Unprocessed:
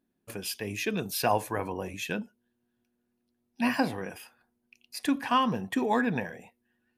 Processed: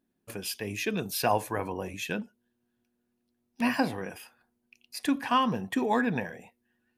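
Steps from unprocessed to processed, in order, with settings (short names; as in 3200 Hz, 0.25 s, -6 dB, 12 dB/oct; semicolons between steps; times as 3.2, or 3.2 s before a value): 2.19–3.62 self-modulated delay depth 0.29 ms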